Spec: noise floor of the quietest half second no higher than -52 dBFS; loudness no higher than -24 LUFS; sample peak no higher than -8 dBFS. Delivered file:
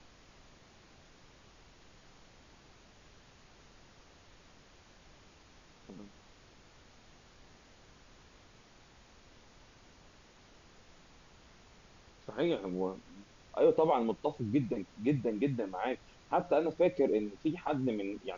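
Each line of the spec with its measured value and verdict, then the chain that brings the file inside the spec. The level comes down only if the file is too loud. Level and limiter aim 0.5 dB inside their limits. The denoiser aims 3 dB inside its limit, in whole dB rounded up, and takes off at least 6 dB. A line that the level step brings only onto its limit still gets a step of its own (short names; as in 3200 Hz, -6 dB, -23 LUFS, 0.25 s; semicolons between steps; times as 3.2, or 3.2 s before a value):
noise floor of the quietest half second -60 dBFS: OK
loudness -33.0 LUFS: OK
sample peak -16.5 dBFS: OK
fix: none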